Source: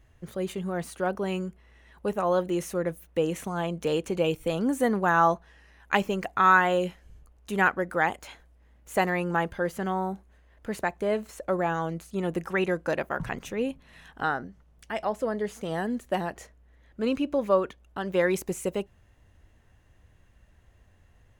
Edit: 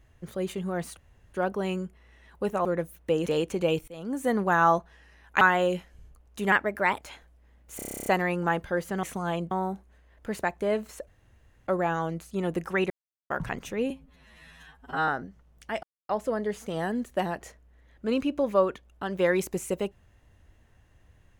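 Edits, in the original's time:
0.97 insert room tone 0.37 s
2.28–2.73 cut
3.34–3.82 move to 9.91
4.44–4.95 fade in, from -22 dB
5.97–6.52 cut
7.63–8.19 speed 114%
8.94 stutter 0.03 s, 11 plays
11.47 insert room tone 0.60 s
12.7–13.1 mute
13.7–14.29 stretch 2×
15.04 insert silence 0.26 s

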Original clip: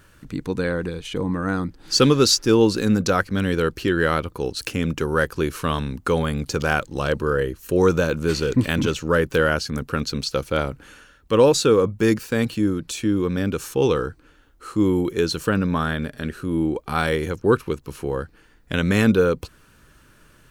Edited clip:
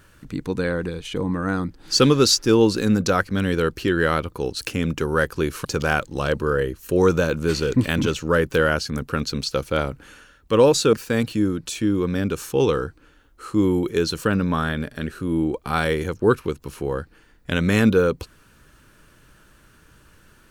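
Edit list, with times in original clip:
5.65–6.45 cut
11.73–12.15 cut

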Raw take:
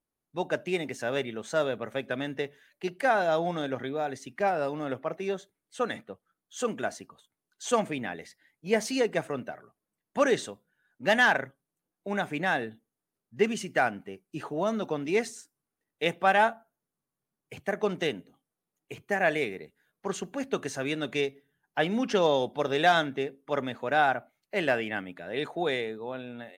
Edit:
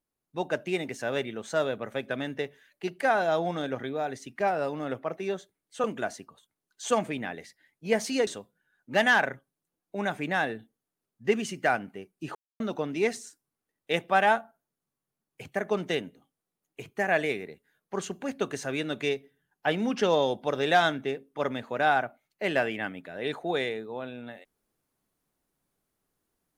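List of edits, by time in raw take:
5.84–6.65 cut
9.08–10.39 cut
14.47–14.72 mute

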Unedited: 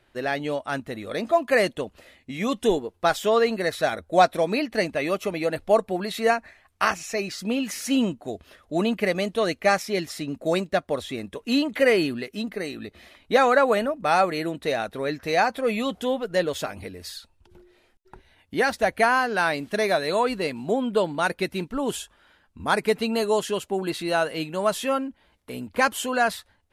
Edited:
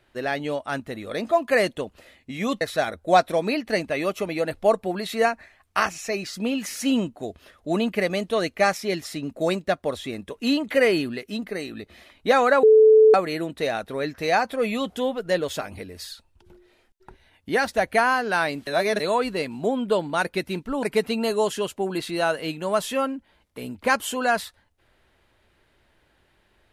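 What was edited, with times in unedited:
2.61–3.66 cut
13.68–14.19 bleep 436 Hz -9.5 dBFS
19.72–20.05 reverse
21.88–22.75 cut

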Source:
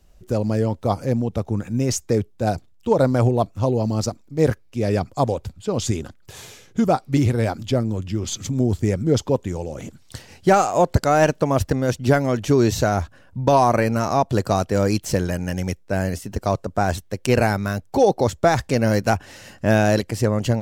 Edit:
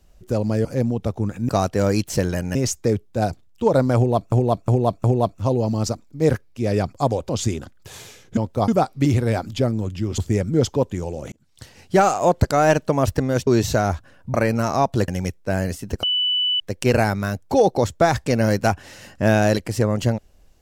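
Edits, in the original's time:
0.65–0.96 move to 6.8
3.21–3.57 loop, 4 plays
5.46–5.72 cut
8.3–8.71 cut
9.85–10.72 fade in equal-power
12–12.55 cut
13.42–13.71 cut
14.45–15.51 move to 1.8
16.46–17.03 bleep 2980 Hz -17.5 dBFS

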